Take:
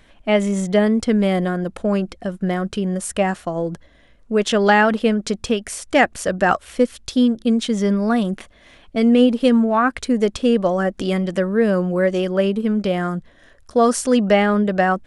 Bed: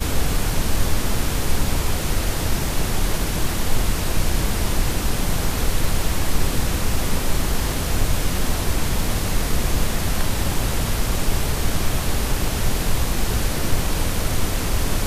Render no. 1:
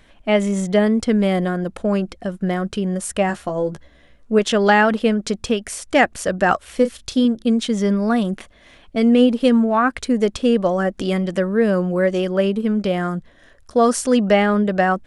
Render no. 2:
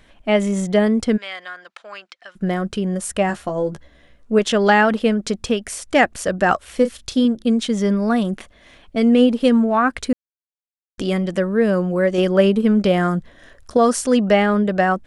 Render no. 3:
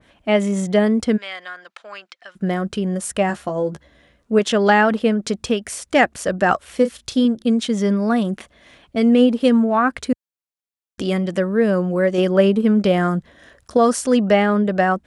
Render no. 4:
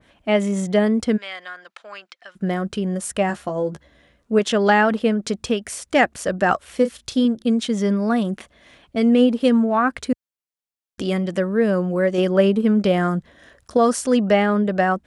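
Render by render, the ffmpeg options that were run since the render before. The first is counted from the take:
-filter_complex "[0:a]asettb=1/sr,asplit=3[s0][s1][s2];[s0]atrim=end=3.284[s3];[s1]atrim=start=3.28:end=4.39,asetpts=PTS-STARTPTS,afade=t=in:d=0.004:c=qsin,afade=t=out:st=1.106:d=0.004:c=qsin,asplit=2[s4][s5];[s5]adelay=14,volume=0.501[s6];[s4][s6]amix=inputs=2:normalize=0,atrim=end_sample=48951[s7];[s2]atrim=start=4.386[s8];[s3][s7]acrossfade=d=0.004:c1=hsin:c2=qsin[s9];[s9][s8]acrossfade=d=0.004:c1=qsin:c2=hsin,asettb=1/sr,asplit=3[s10][s11][s12];[s10]atrim=end=6.704[s13];[s11]atrim=start=6.7:end=7.25,asetpts=PTS-STARTPTS,afade=t=in:d=0.004:c=qsin,afade=t=out:st=0.546:d=0.004:c=qsin,asplit=2[s14][s15];[s15]adelay=34,volume=0.282[s16];[s14][s16]amix=inputs=2:normalize=0,atrim=end_sample=24255[s17];[s12]atrim=start=7.246[s18];[s13][s17]acrossfade=d=0.004:c1=hsin:c2=qsin[s19];[s19][s18]acrossfade=d=0.004:c1=qsin:c2=hsin"
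-filter_complex "[0:a]asplit=3[s0][s1][s2];[s0]afade=t=out:st=1.16:d=0.02[s3];[s1]asuperpass=centerf=2700:order=4:qfactor=0.64,afade=t=in:st=1.16:d=0.02,afade=t=out:st=2.35:d=0.02[s4];[s2]afade=t=in:st=2.35:d=0.02[s5];[s3][s4][s5]amix=inputs=3:normalize=0,asplit=5[s6][s7][s8][s9][s10];[s6]atrim=end=10.13,asetpts=PTS-STARTPTS,afade=t=out:st=10.126:d=0.004:c=hsin[s11];[s7]atrim=start=10.13:end=10.98,asetpts=PTS-STARTPTS,volume=0[s12];[s8]atrim=start=10.98:end=12.182,asetpts=PTS-STARTPTS,afade=t=in:d=0.004:c=hsin[s13];[s9]atrim=start=12.178:end=13.772,asetpts=PTS-STARTPTS,volume=1.58[s14];[s10]atrim=start=13.768[s15];[s11][s12][s13]concat=n=3:v=0:a=1[s16];[s16][s14]acrossfade=d=0.004:c1=hsin:c2=hsin[s17];[s17][s15]acrossfade=d=0.004:c1=hsin:c2=hsin"
-af "highpass=62,adynamicequalizer=threshold=0.0355:dfrequency=1900:dqfactor=0.7:tfrequency=1900:tqfactor=0.7:attack=5:release=100:ratio=0.375:range=1.5:mode=cutabove:tftype=highshelf"
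-af "volume=0.841"

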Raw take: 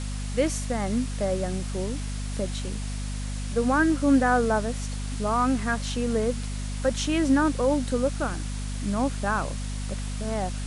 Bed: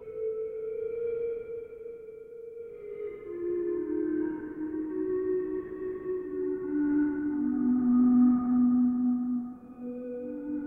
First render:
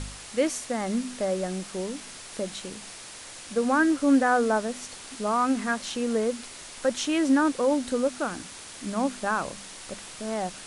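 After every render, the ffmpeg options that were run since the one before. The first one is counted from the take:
-af "bandreject=f=50:t=h:w=4,bandreject=f=100:t=h:w=4,bandreject=f=150:t=h:w=4,bandreject=f=200:t=h:w=4,bandreject=f=250:t=h:w=4"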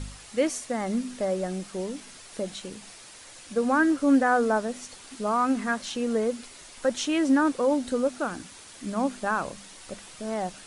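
-af "afftdn=nr=6:nf=-43"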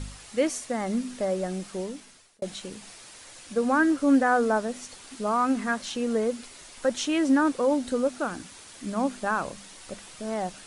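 -filter_complex "[0:a]asplit=2[s0][s1];[s0]atrim=end=2.42,asetpts=PTS-STARTPTS,afade=t=out:st=1.77:d=0.65[s2];[s1]atrim=start=2.42,asetpts=PTS-STARTPTS,afade=t=in:d=0.004:c=hsin[s3];[s2][s3]concat=n=2:v=0:a=1"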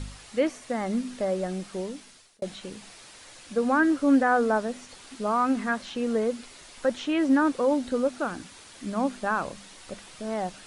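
-filter_complex "[0:a]acrossover=split=2900[s0][s1];[s1]acompressor=threshold=0.00398:ratio=4:attack=1:release=60[s2];[s0][s2]amix=inputs=2:normalize=0,equalizer=f=4100:w=1.2:g=3"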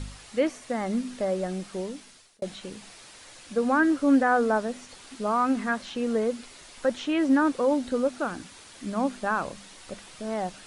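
-af anull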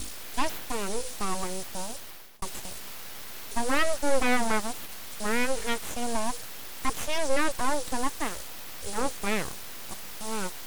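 -filter_complex "[0:a]acrossover=split=480|1900[s0][s1][s2];[s2]crystalizer=i=4:c=0[s3];[s0][s1][s3]amix=inputs=3:normalize=0,aeval=exprs='abs(val(0))':c=same"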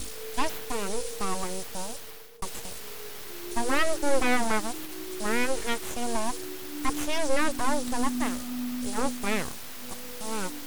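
-filter_complex "[1:a]volume=0.335[s0];[0:a][s0]amix=inputs=2:normalize=0"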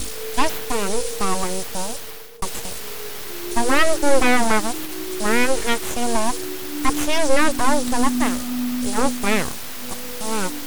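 -af "volume=2.66,alimiter=limit=0.708:level=0:latency=1"

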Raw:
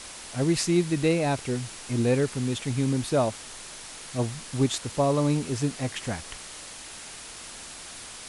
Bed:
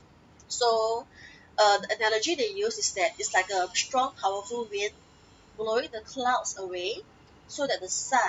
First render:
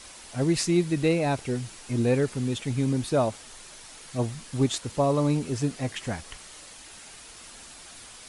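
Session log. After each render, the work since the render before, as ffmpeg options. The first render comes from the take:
-af "afftdn=nr=6:nf=-42"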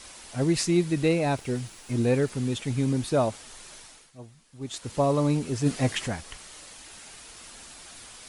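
-filter_complex "[0:a]asettb=1/sr,asplit=3[s0][s1][s2];[s0]atrim=end=1.374[s3];[s1]atrim=start=1.37:end=2.3,asetpts=PTS-STARTPTS,afade=t=in:d=0.004:c=qsin,afade=t=out:st=0.926:d=0.004:c=qsin,aeval=exprs='sgn(val(0))*max(abs(val(0))-0.00158,0)':c=same[s4];[s2]atrim=start=2.296[s5];[s3][s4]acrossfade=d=0.004:c1=hsin:c2=qsin[s6];[s6][s5]acrossfade=d=0.004:c1=qsin:c2=hsin,asplit=3[s7][s8][s9];[s7]afade=t=out:st=5.65:d=0.02[s10];[s8]acontrast=39,afade=t=in:st=5.65:d=0.02,afade=t=out:st=6.06:d=0.02[s11];[s9]afade=t=in:st=6.06:d=0.02[s12];[s10][s11][s12]amix=inputs=3:normalize=0,asplit=3[s13][s14][s15];[s13]atrim=end=4.12,asetpts=PTS-STARTPTS,afade=t=out:st=3.77:d=0.35:silence=0.133352[s16];[s14]atrim=start=4.12:end=4.6,asetpts=PTS-STARTPTS,volume=0.133[s17];[s15]atrim=start=4.6,asetpts=PTS-STARTPTS,afade=t=in:d=0.35:silence=0.133352[s18];[s16][s17][s18]concat=n=3:v=0:a=1"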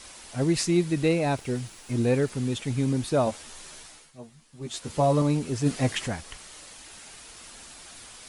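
-filter_complex "[0:a]asettb=1/sr,asplit=3[s0][s1][s2];[s0]atrim=end=3.254[s3];[s1]atrim=start=3.25:end=5.22,asetpts=PTS-STARTPTS,afade=t=in:d=0.004:c=qsin,afade=t=out:st=1.966:d=0.004:c=qsin,asplit=2[s4][s5];[s5]adelay=13,volume=0.631[s6];[s4][s6]amix=inputs=2:normalize=0,atrim=end_sample=86877[s7];[s2]atrim=start=5.216[s8];[s3][s7]acrossfade=d=0.004:c1=hsin:c2=qsin[s9];[s9][s8]acrossfade=d=0.004:c1=qsin:c2=hsin"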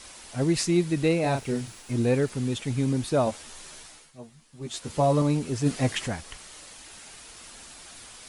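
-filter_complex "[0:a]asettb=1/sr,asplit=3[s0][s1][s2];[s0]atrim=end=1.204[s3];[s1]atrim=start=1.2:end=1.82,asetpts=PTS-STARTPTS,afade=t=in:d=0.004:c=qsin,afade=t=out:st=0.616:d=0.004:c=qsin,asplit=2[s4][s5];[s5]adelay=37,volume=0.501[s6];[s4][s6]amix=inputs=2:normalize=0,atrim=end_sample=27342[s7];[s2]atrim=start=1.816[s8];[s3][s7]acrossfade=d=0.004:c1=hsin:c2=qsin[s9];[s9][s8]acrossfade=d=0.004:c1=qsin:c2=hsin"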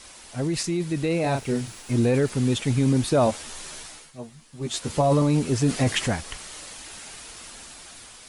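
-af "alimiter=limit=0.126:level=0:latency=1:release=10,dynaudnorm=f=660:g=5:m=2"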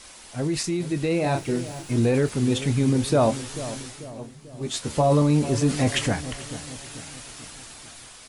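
-filter_complex "[0:a]asplit=2[s0][s1];[s1]adelay=27,volume=0.224[s2];[s0][s2]amix=inputs=2:normalize=0,asplit=2[s3][s4];[s4]adelay=441,lowpass=f=1100:p=1,volume=0.224,asplit=2[s5][s6];[s6]adelay=441,lowpass=f=1100:p=1,volume=0.52,asplit=2[s7][s8];[s8]adelay=441,lowpass=f=1100:p=1,volume=0.52,asplit=2[s9][s10];[s10]adelay=441,lowpass=f=1100:p=1,volume=0.52,asplit=2[s11][s12];[s12]adelay=441,lowpass=f=1100:p=1,volume=0.52[s13];[s3][s5][s7][s9][s11][s13]amix=inputs=6:normalize=0"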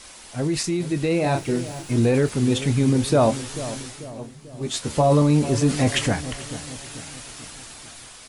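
-af "volume=1.26"

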